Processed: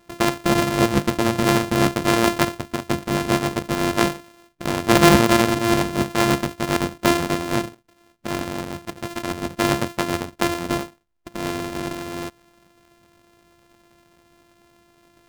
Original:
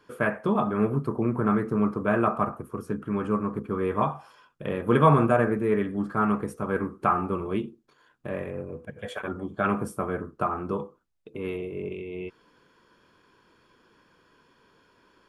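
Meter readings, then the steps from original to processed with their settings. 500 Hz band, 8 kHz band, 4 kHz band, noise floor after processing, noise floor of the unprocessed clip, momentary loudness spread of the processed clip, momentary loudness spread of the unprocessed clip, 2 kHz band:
+4.5 dB, n/a, +22.5 dB, -58 dBFS, -63 dBFS, 13 LU, 14 LU, +9.0 dB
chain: sample sorter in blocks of 128 samples; harmonic-percussive split percussive +5 dB; Doppler distortion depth 0.12 ms; gain +4.5 dB

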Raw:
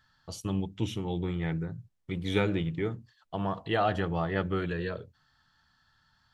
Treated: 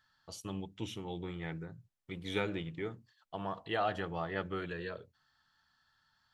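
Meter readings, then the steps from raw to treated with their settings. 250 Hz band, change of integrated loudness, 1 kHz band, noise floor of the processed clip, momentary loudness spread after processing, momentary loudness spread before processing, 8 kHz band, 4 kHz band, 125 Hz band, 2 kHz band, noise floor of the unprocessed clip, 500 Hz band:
-9.5 dB, -7.5 dB, -5.5 dB, -76 dBFS, 13 LU, 12 LU, n/a, -4.5 dB, -11.0 dB, -4.5 dB, -70 dBFS, -6.5 dB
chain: low shelf 270 Hz -8.5 dB; gain -4.5 dB

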